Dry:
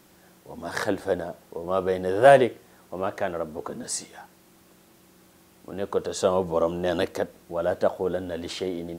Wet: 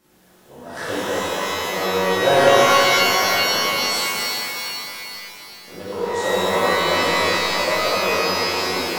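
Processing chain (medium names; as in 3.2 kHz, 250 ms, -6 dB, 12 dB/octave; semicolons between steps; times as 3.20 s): pitch-shifted reverb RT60 3.2 s, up +12 st, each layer -2 dB, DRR -12 dB; trim -9.5 dB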